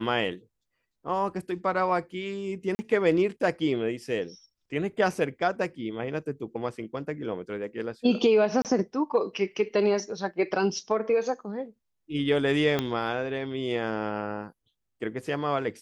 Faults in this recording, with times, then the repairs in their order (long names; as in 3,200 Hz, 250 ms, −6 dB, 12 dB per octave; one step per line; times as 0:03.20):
0:02.75–0:02.79: drop-out 40 ms
0:08.62–0:08.65: drop-out 28 ms
0:12.79: click −12 dBFS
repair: click removal
repair the gap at 0:02.75, 40 ms
repair the gap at 0:08.62, 28 ms